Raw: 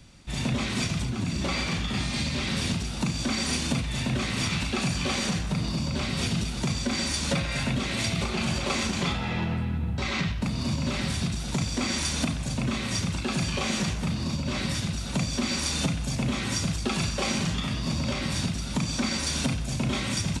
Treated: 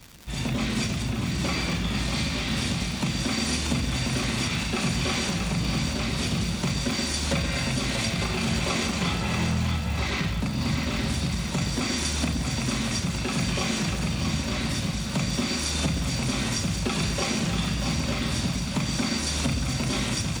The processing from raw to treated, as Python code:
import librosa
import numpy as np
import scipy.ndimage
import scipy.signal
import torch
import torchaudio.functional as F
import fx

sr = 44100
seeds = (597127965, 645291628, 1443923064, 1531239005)

y = fx.echo_split(x, sr, split_hz=560.0, low_ms=120, high_ms=636, feedback_pct=52, wet_db=-5.0)
y = fx.dmg_crackle(y, sr, seeds[0], per_s=390.0, level_db=-34.0)